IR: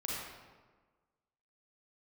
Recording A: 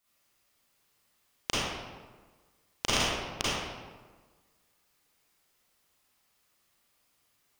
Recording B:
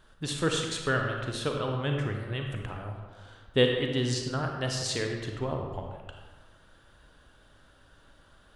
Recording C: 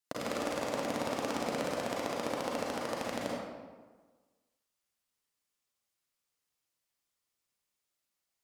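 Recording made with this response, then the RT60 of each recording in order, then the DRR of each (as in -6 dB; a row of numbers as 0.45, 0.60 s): C; 1.4, 1.4, 1.4 s; -10.0, 2.0, -5.0 dB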